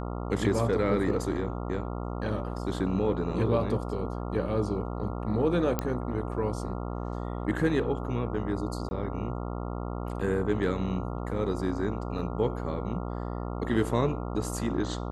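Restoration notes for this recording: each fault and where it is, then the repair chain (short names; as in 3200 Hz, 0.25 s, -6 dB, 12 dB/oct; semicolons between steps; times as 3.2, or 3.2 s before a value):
buzz 60 Hz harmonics 23 -34 dBFS
5.79 pop -13 dBFS
8.89–8.91 gap 20 ms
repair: de-click; de-hum 60 Hz, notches 23; interpolate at 8.89, 20 ms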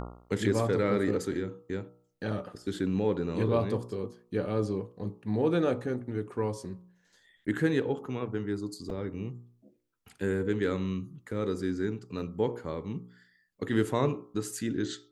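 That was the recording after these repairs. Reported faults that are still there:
none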